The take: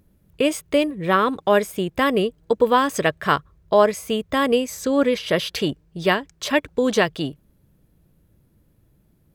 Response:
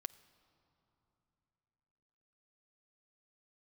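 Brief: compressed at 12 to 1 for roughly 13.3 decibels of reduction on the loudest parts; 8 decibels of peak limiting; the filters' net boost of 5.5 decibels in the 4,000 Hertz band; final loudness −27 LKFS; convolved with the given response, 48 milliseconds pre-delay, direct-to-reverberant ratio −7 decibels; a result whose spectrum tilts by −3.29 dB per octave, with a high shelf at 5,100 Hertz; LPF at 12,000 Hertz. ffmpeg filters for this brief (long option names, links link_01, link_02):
-filter_complex "[0:a]lowpass=12000,equalizer=frequency=4000:width_type=o:gain=5,highshelf=frequency=5100:gain=6.5,acompressor=threshold=-24dB:ratio=12,alimiter=limit=-20dB:level=0:latency=1,asplit=2[link_01][link_02];[1:a]atrim=start_sample=2205,adelay=48[link_03];[link_02][link_03]afir=irnorm=-1:irlink=0,volume=11dB[link_04];[link_01][link_04]amix=inputs=2:normalize=0,volume=-3.5dB"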